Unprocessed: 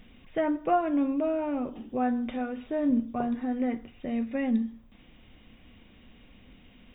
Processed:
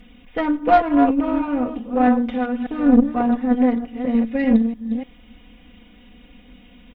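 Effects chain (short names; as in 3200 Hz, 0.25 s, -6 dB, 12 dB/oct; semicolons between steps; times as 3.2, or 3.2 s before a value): reverse delay 0.296 s, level -7 dB; added harmonics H 2 -14 dB, 6 -23 dB, 7 -28 dB, 8 -33 dB, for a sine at -13 dBFS; comb 4.1 ms, depth 96%; gain +5.5 dB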